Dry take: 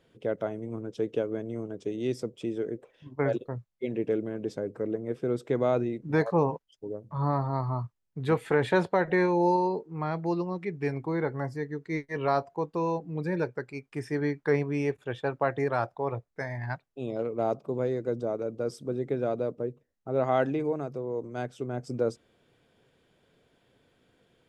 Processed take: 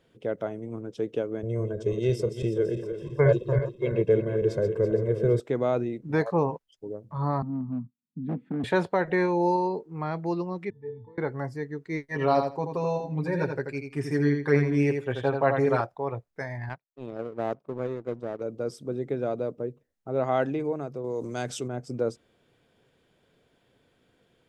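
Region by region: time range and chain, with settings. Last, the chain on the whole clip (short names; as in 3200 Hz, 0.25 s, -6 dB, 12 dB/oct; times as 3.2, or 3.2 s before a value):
1.43–5.4 regenerating reverse delay 0.166 s, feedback 68%, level -9 dB + low shelf 290 Hz +9.5 dB + comb 1.9 ms, depth 88%
7.42–8.64 EQ curve 130 Hz 0 dB, 250 Hz +14 dB, 400 Hz -16 dB, 1100 Hz -23 dB + hard clip -22.5 dBFS + BPF 180–2700 Hz
10.7–11.18 G.711 law mismatch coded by mu + low shelf 170 Hz +11.5 dB + octave resonator A, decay 0.33 s
12.1–15.81 comb 7.5 ms, depth 86% + feedback echo 83 ms, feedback 17%, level -6 dB
16.69–18.41 high shelf 3100 Hz -7.5 dB + power-law curve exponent 1.4
21.04–21.68 bell 7100 Hz +13 dB 2.3 oct + fast leveller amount 50%
whole clip: dry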